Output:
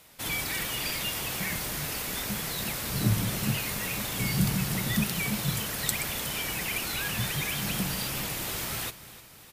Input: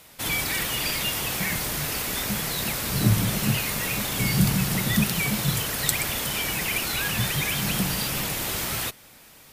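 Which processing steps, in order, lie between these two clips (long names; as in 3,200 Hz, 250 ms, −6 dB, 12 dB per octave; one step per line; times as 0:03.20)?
repeating echo 304 ms, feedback 56%, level −16.5 dB
level −5 dB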